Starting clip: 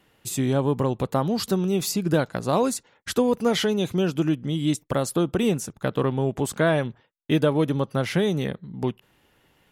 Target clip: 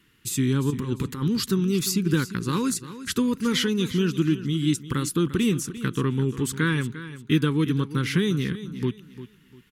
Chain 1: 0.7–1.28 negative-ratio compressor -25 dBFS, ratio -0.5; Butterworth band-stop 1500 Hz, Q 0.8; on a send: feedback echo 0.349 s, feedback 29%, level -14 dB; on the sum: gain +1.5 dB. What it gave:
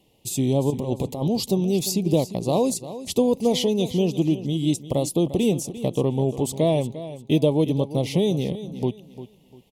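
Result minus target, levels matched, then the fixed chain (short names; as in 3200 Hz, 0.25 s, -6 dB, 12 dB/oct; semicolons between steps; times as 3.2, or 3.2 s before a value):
2000 Hz band -13.0 dB
0.7–1.28 negative-ratio compressor -25 dBFS, ratio -0.5; Butterworth band-stop 660 Hz, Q 0.8; on a send: feedback echo 0.349 s, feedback 29%, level -14 dB; on the sum: gain +1.5 dB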